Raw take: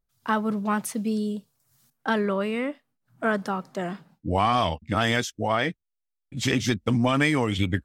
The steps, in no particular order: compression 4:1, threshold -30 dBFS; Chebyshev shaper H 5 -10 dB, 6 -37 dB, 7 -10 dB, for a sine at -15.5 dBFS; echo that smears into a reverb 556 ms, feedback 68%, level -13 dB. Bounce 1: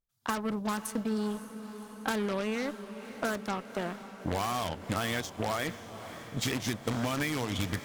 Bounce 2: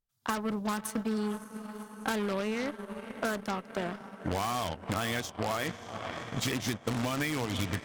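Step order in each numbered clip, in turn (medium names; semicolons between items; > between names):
Chebyshev shaper > compression > echo that smears into a reverb; echo that smears into a reverb > Chebyshev shaper > compression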